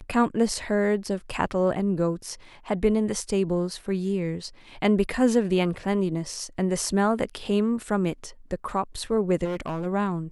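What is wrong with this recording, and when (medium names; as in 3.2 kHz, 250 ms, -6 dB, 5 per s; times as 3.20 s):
9.44–9.87 s: clipped -25.5 dBFS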